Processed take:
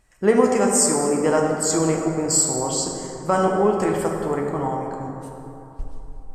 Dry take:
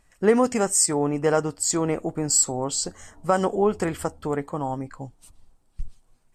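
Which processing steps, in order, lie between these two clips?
dense smooth reverb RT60 3.2 s, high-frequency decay 0.4×, DRR 0 dB

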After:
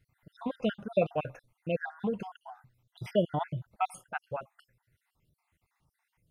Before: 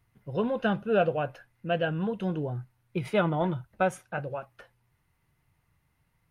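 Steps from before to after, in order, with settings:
time-frequency cells dropped at random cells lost 55%

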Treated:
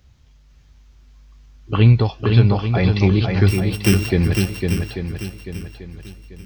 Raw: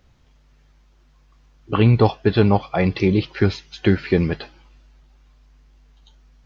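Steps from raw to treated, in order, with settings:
0:03.48–0:04.10: samples sorted by size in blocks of 16 samples
high-shelf EQ 2,300 Hz +9.5 dB
0:01.92–0:02.72: downward compressor, threshold −14 dBFS, peak gain reduction 6 dB
parametric band 74 Hz +12 dB 2.2 octaves
on a send: feedback echo with a long and a short gap by turns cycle 840 ms, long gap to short 1.5 to 1, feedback 31%, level −4.5 dB
on the sum: level −4.5 dB

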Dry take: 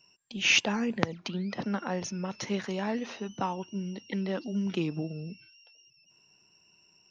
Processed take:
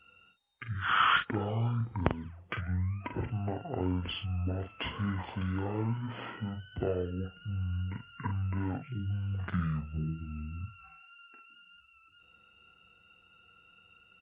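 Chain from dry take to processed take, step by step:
in parallel at +1 dB: downward compressor, threshold −37 dBFS, peak gain reduction 17 dB
on the sum: double-tracking delay 22 ms −7.5 dB
wrong playback speed 15 ips tape played at 7.5 ips
level −5 dB

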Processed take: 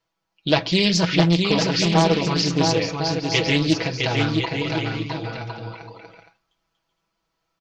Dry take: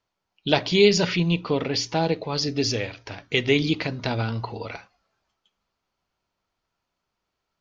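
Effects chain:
comb filter 6.1 ms, depth 79%
bouncing-ball delay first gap 660 ms, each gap 0.6×, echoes 5
highs frequency-modulated by the lows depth 0.36 ms

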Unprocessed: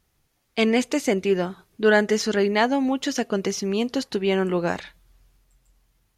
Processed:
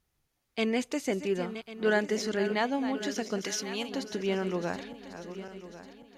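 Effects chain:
feedback delay that plays each chunk backwards 548 ms, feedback 62%, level −11 dB
0:03.42–0:03.89: tilt shelving filter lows −6.5 dB, about 880 Hz
level −8.5 dB

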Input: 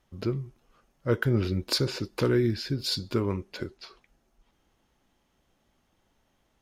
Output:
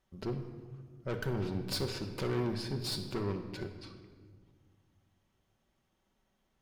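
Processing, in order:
tube saturation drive 28 dB, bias 0.8
rectangular room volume 2,100 cubic metres, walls mixed, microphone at 1.1 metres
level −3 dB

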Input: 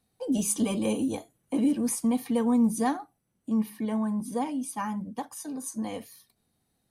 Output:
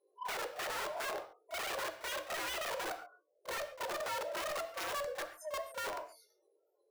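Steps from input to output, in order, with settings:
pitch shifter gated in a rhythm +5.5 semitones, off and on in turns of 169 ms
gate on every frequency bin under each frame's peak −10 dB strong
low-shelf EQ 250 Hz +7 dB
treble cut that deepens with the level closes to 300 Hz, closed at −22.5 dBFS
chorus effect 1.1 Hz, delay 19 ms, depth 3.5 ms
wrap-around overflow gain 30.5 dB
frequency shifter +310 Hz
soft clipping −34.5 dBFS, distortion −11 dB
backwards echo 32 ms −15 dB
on a send at −8.5 dB: convolution reverb, pre-delay 4 ms

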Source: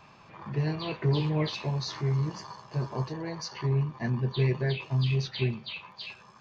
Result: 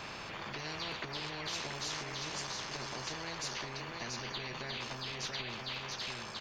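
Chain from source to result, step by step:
brickwall limiter −26 dBFS, peak gain reduction 10.5 dB
single-tap delay 683 ms −10 dB
every bin compressed towards the loudest bin 4 to 1
level +1 dB

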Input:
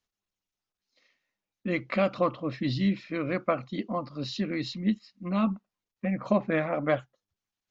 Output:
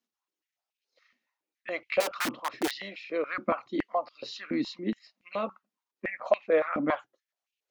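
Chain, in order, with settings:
0:02.00–0:02.71: wrap-around overflow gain 23.5 dB
high-pass on a step sequencer 7.1 Hz 240–2,600 Hz
level −3.5 dB

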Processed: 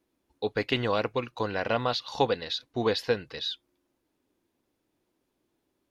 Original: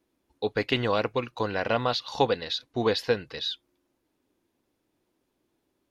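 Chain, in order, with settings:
level −1.5 dB

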